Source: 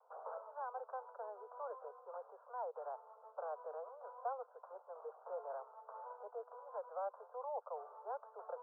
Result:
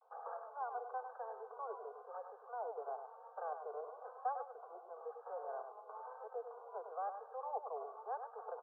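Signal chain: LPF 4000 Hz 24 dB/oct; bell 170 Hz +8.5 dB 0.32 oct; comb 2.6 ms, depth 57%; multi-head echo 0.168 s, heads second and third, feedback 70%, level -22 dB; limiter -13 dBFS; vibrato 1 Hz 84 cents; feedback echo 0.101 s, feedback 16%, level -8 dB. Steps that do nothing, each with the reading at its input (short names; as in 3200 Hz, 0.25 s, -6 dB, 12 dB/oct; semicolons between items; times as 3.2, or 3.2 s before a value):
LPF 4000 Hz: input band ends at 1600 Hz; bell 170 Hz: input band starts at 360 Hz; limiter -13 dBFS: input peak -27.5 dBFS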